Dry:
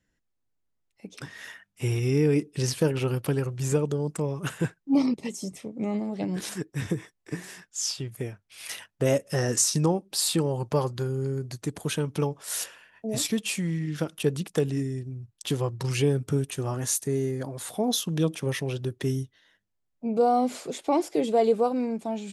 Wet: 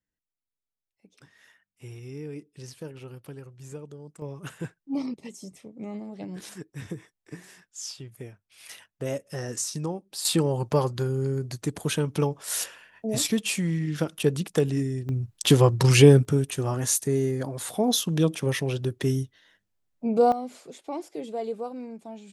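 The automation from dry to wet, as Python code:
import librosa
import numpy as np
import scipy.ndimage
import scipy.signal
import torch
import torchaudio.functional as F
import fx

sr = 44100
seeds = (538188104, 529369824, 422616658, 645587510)

y = fx.gain(x, sr, db=fx.steps((0.0, -15.5), (4.22, -7.5), (10.25, 2.0), (15.09, 10.0), (16.25, 2.5), (20.32, -10.0)))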